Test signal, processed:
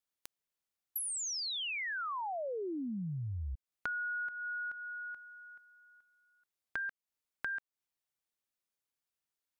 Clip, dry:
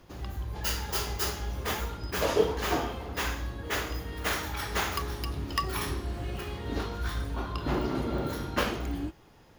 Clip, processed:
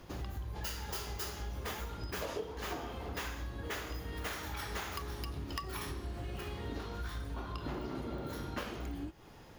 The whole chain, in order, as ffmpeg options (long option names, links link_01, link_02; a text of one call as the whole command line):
ffmpeg -i in.wav -af "acompressor=threshold=-40dB:ratio=6,volume=2.5dB" out.wav